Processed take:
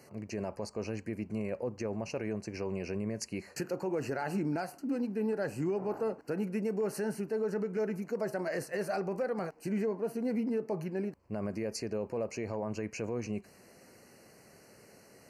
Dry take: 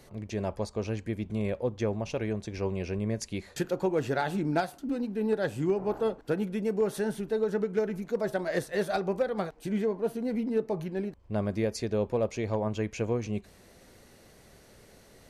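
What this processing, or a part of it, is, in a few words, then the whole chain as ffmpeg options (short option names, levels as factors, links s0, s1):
PA system with an anti-feedback notch: -af "highpass=130,asuperstop=centerf=3500:order=8:qfactor=2.9,alimiter=limit=0.0631:level=0:latency=1:release=35,volume=0.891"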